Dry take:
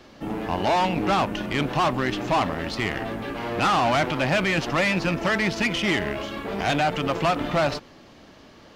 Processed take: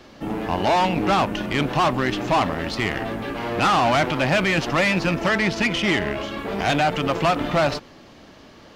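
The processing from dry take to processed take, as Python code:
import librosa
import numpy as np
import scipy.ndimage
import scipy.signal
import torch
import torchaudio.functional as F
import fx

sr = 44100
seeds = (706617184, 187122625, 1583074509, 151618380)

y = fx.high_shelf(x, sr, hz=11000.0, db=-7.0, at=(5.29, 6.39))
y = y * 10.0 ** (2.5 / 20.0)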